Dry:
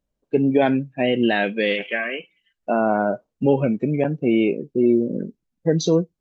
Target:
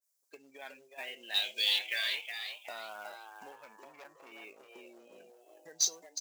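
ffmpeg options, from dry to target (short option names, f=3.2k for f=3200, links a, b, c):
-filter_complex "[0:a]dynaudnorm=f=500:g=5:m=11.5dB,bandreject=f=2.8k:w=30,acompressor=threshold=-28dB:ratio=8,asettb=1/sr,asplit=3[a][b][c];[a]atrim=end=1.344[d];[b]atrim=start=1.34:end=1.79,asetpts=PTS-STARTPTS,afade=t=in:d=0.004:c=qsin,afade=t=out:st=0.446:d=0.004:c=qsin,highshelf=f=2.6k:t=q:w=3:g=10[e];[c]atrim=start=1.786[f];[d][e]acrossfade=d=0.004:c1=hsin:c2=qsin[g];[g][f]acrossfade=d=0.004:c1=qsin:c2=hsin,asettb=1/sr,asplit=3[h][i][j];[h]atrim=end=3.524[k];[i]atrim=start=3.52:end=4.32,asetpts=PTS-STARTPTS,afade=t=in:d=0.004:c=qsin,afade=t=out:st=0.796:d=0.004:c=qsin,aeval=exprs='(tanh(25.1*val(0)+0.4)-tanh(0.4))/25.1':c=same[l];[j]atrim=start=4.316[m];[k][l]acrossfade=d=0.004:c1=hsin:c2=qsin[n];[n][m]acrossfade=d=0.004:c1=qsin:c2=hsin,asplit=5[o][p][q][r][s];[p]adelay=367,afreqshift=130,volume=-7.5dB[t];[q]adelay=734,afreqshift=260,volume=-16.6dB[u];[r]adelay=1101,afreqshift=390,volume=-25.7dB[v];[s]adelay=1468,afreqshift=520,volume=-34.9dB[w];[o][t][u][v][w]amix=inputs=5:normalize=0,aexciter=amount=3.7:drive=9.4:freq=4.7k,highpass=1.2k,acrusher=bits=4:mode=log:mix=0:aa=0.000001,adynamicequalizer=threshold=0.00708:dfrequency=1800:dqfactor=0.7:tfrequency=1800:tqfactor=0.7:attack=5:release=100:ratio=0.375:range=2.5:mode=boostabove:tftype=highshelf,volume=-5dB"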